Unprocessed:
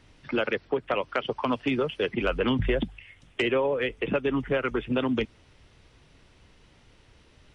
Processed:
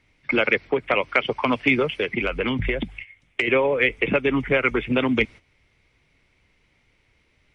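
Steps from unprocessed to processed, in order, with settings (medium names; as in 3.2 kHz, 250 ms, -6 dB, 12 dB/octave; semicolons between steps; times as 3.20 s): gate -44 dBFS, range -13 dB; peaking EQ 2.2 kHz +14 dB 0.31 oct; 1.85–3.48 s: compression 6:1, threshold -25 dBFS, peak gain reduction 8.5 dB; trim +4.5 dB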